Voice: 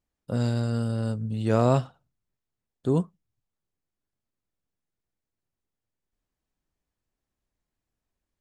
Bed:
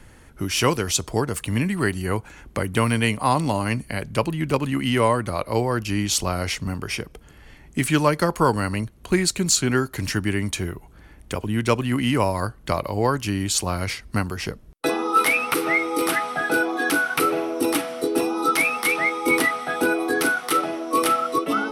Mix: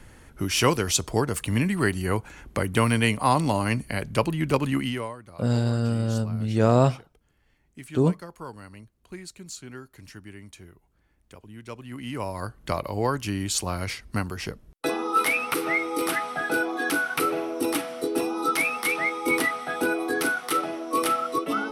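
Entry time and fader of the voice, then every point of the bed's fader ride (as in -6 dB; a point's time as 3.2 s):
5.10 s, +2.5 dB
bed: 4.79 s -1 dB
5.16 s -20 dB
11.64 s -20 dB
12.63 s -4 dB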